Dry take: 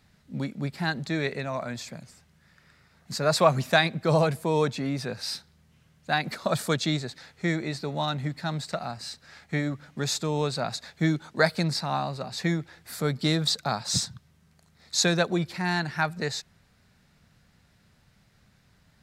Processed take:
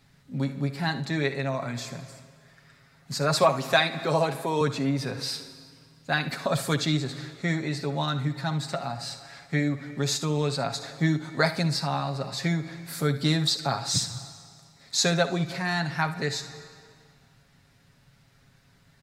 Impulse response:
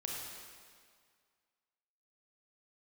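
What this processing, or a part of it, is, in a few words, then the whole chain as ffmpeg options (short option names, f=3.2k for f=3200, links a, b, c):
ducked reverb: -filter_complex "[0:a]asettb=1/sr,asplit=3[a][b][c];[a]atrim=end=3.434[d];[b]atrim=start=3.43:end=4.61,asetpts=PTS-STARTPTS,afade=t=in:d=0.004:c=qsin,afade=t=out:st=1.176:d=0.004:c=qsin,highpass=230[e];[c]atrim=start=4.606[f];[d][e]acrossfade=d=0.004:c1=hsin:c2=qsin[g];[g][f]acrossfade=d=0.004:c1=qsin:c2=hsin,aecho=1:1:7.3:0.57,asplit=3[h][i][j];[1:a]atrim=start_sample=2205[k];[i][k]afir=irnorm=-1:irlink=0[l];[j]apad=whole_len=839269[m];[l][m]sidechaincompress=threshold=-33dB:ratio=8:attack=16:release=126,volume=-8dB[n];[h][n]amix=inputs=2:normalize=0,aecho=1:1:59|75:0.168|0.15,volume=-1.5dB"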